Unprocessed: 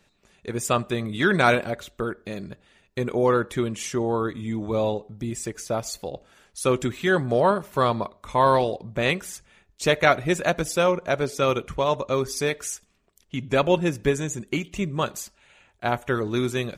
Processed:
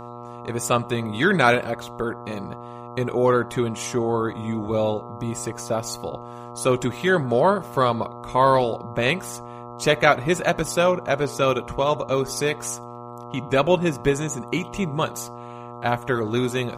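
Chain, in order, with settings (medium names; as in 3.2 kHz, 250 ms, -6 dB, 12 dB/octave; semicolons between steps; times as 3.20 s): mains buzz 120 Hz, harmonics 11, -39 dBFS -1 dB/octave; trim +1.5 dB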